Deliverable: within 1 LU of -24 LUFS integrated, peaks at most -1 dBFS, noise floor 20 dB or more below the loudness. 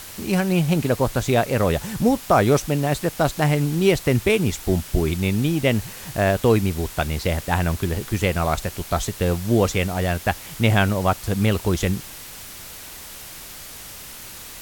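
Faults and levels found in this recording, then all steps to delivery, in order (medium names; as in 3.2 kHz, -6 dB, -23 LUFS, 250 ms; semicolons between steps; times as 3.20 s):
noise floor -38 dBFS; noise floor target -42 dBFS; loudness -21.5 LUFS; peak level -4.0 dBFS; loudness target -24.0 LUFS
-> noise reduction 6 dB, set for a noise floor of -38 dBFS; trim -2.5 dB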